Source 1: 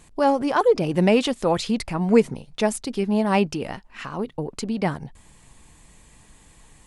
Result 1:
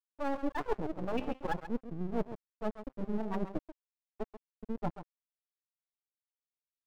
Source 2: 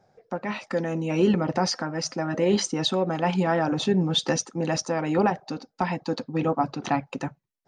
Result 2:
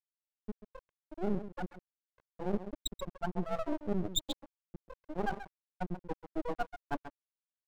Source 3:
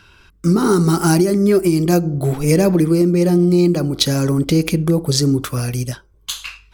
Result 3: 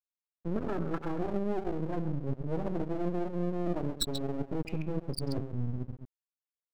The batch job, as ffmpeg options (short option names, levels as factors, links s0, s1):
-filter_complex "[0:a]afftfilt=real='re*pow(10,7/40*sin(2*PI*(1.9*log(max(b,1)*sr/1024/100)/log(2)-(-0.31)*(pts-256)/sr)))':imag='im*pow(10,7/40*sin(2*PI*(1.9*log(max(b,1)*sr/1024/100)/log(2)-(-0.31)*(pts-256)/sr)))':win_size=1024:overlap=0.75,afftfilt=real='re*gte(hypot(re,im),0.562)':imag='im*gte(hypot(re,im),0.562)':win_size=1024:overlap=0.75,bandreject=f=510:w=12,areverse,acompressor=threshold=0.0562:ratio=10,areverse,bandreject=f=130.9:t=h:w=4,bandreject=f=261.8:t=h:w=4,bandreject=f=392.7:t=h:w=4,bandreject=f=523.6:t=h:w=4,bandreject=f=654.5:t=h:w=4,bandreject=f=785.4:t=h:w=4,bandreject=f=916.3:t=h:w=4,bandreject=f=1047.2:t=h:w=4,bandreject=f=1178.1:t=h:w=4,bandreject=f=1309:t=h:w=4,bandreject=f=1439.9:t=h:w=4,bandreject=f=1570.8:t=h:w=4,bandreject=f=1701.7:t=h:w=4,bandreject=f=1832.6:t=h:w=4,bandreject=f=1963.5:t=h:w=4,bandreject=f=2094.4:t=h:w=4,bandreject=f=2225.3:t=h:w=4,bandreject=f=2356.2:t=h:w=4,bandreject=f=2487.1:t=h:w=4,bandreject=f=2618:t=h:w=4,bandreject=f=2748.9:t=h:w=4,bandreject=f=2879.8:t=h:w=4,bandreject=f=3010.7:t=h:w=4,bandreject=f=3141.6:t=h:w=4,bandreject=f=3272.5:t=h:w=4,asplit=2[s0][s1];[s1]aecho=0:1:134:0.316[s2];[s0][s2]amix=inputs=2:normalize=0,aeval=exprs='max(val(0),0)':c=same,highshelf=f=9400:g=10.5,aeval=exprs='sgn(val(0))*max(abs(val(0))-0.00668,0)':c=same"